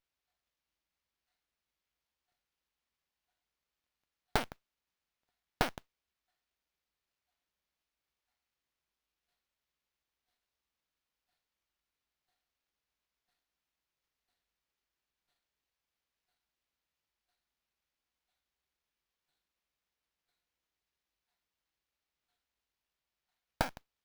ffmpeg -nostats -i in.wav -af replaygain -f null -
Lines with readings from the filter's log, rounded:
track_gain = +64.0 dB
track_peak = 0.229